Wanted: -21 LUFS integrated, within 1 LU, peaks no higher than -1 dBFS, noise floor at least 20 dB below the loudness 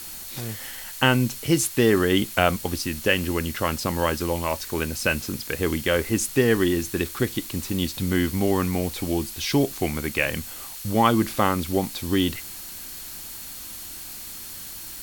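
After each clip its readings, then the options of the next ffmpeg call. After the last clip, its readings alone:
steady tone 4.3 kHz; tone level -50 dBFS; noise floor -38 dBFS; noise floor target -45 dBFS; loudness -24.5 LUFS; peak level -3.0 dBFS; loudness target -21.0 LUFS
-> -af "bandreject=f=4300:w=30"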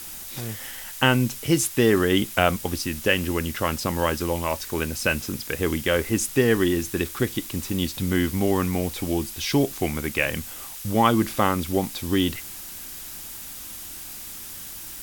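steady tone not found; noise floor -38 dBFS; noise floor target -45 dBFS
-> -af "afftdn=nr=7:nf=-38"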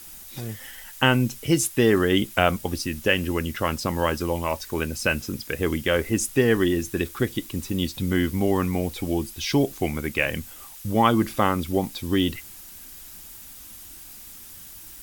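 noise floor -43 dBFS; noise floor target -44 dBFS
-> -af "afftdn=nr=6:nf=-43"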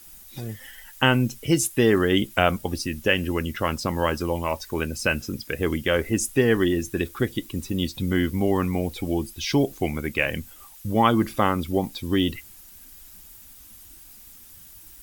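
noise floor -47 dBFS; loudness -24.0 LUFS; peak level -3.0 dBFS; loudness target -21.0 LUFS
-> -af "volume=1.41,alimiter=limit=0.891:level=0:latency=1"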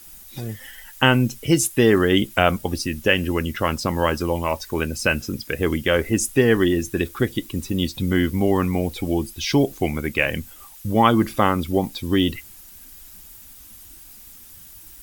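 loudness -21.0 LUFS; peak level -1.0 dBFS; noise floor -44 dBFS

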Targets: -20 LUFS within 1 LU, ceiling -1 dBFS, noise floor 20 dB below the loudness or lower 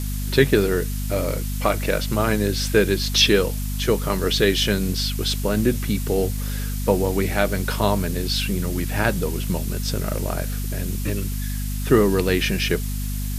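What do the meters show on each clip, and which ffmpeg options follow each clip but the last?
hum 50 Hz; highest harmonic 250 Hz; hum level -24 dBFS; noise floor -26 dBFS; noise floor target -42 dBFS; loudness -22.0 LUFS; peak level -2.0 dBFS; loudness target -20.0 LUFS
-> -af "bandreject=f=50:t=h:w=6,bandreject=f=100:t=h:w=6,bandreject=f=150:t=h:w=6,bandreject=f=200:t=h:w=6,bandreject=f=250:t=h:w=6"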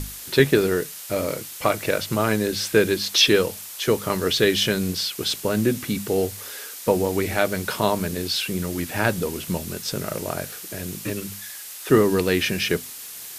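hum not found; noise floor -38 dBFS; noise floor target -43 dBFS
-> -af "afftdn=nr=6:nf=-38"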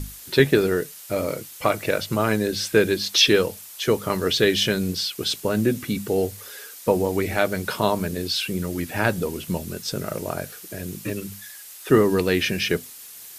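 noise floor -42 dBFS; noise floor target -43 dBFS
-> -af "afftdn=nr=6:nf=-42"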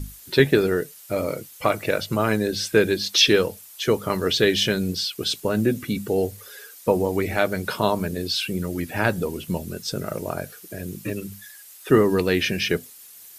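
noise floor -46 dBFS; loudness -23.0 LUFS; peak level -2.0 dBFS; loudness target -20.0 LUFS
-> -af "volume=1.41,alimiter=limit=0.891:level=0:latency=1"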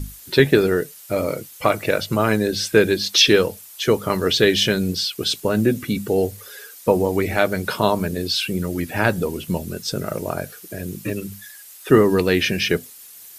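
loudness -20.0 LUFS; peak level -1.0 dBFS; noise floor -43 dBFS

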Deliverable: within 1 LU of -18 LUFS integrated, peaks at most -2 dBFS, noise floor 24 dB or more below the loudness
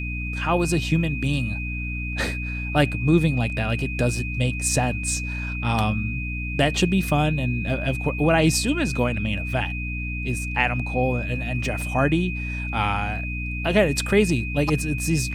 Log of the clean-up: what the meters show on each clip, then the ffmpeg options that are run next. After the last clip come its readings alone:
hum 60 Hz; highest harmonic 300 Hz; hum level -27 dBFS; steady tone 2.5 kHz; tone level -31 dBFS; loudness -23.5 LUFS; peak level -5.5 dBFS; loudness target -18.0 LUFS
-> -af "bandreject=f=60:t=h:w=6,bandreject=f=120:t=h:w=6,bandreject=f=180:t=h:w=6,bandreject=f=240:t=h:w=6,bandreject=f=300:t=h:w=6"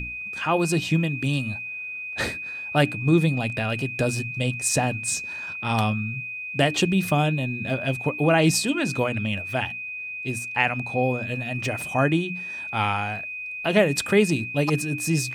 hum not found; steady tone 2.5 kHz; tone level -31 dBFS
-> -af "bandreject=f=2500:w=30"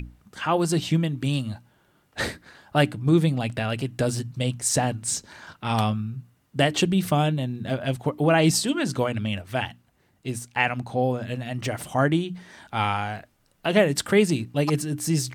steady tone not found; loudness -25.0 LUFS; peak level -6.0 dBFS; loudness target -18.0 LUFS
-> -af "volume=2.24,alimiter=limit=0.794:level=0:latency=1"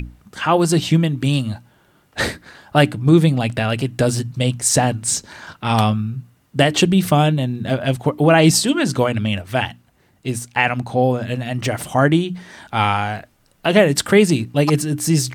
loudness -18.0 LUFS; peak level -2.0 dBFS; noise floor -58 dBFS

